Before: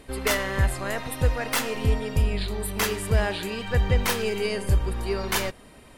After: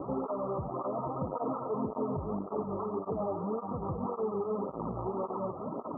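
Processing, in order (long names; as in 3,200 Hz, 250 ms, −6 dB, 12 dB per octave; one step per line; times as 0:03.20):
in parallel at −5 dB: fuzz pedal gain 46 dB, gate −53 dBFS
on the sum: high-pass filter 170 Hz 12 dB per octave
downward compressor, threshold −20 dBFS, peak gain reduction 7 dB
Chebyshev low-pass filter 1,300 Hz, order 10
through-zero flanger with one copy inverted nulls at 1.8 Hz, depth 4.7 ms
level −5 dB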